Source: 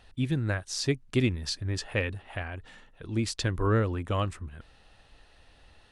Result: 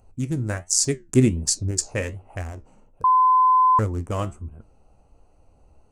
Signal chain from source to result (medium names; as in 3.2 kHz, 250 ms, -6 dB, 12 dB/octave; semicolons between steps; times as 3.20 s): local Wiener filter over 25 samples; resonant high shelf 5.2 kHz +13 dB, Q 3; flange 1.3 Hz, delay 9 ms, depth 7.3 ms, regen +66%; 1.00–1.71 s: peaking EQ 230 Hz +6.5 dB 1.9 oct; 3.04–3.79 s: bleep 1.02 kHz -20.5 dBFS; trim +7.5 dB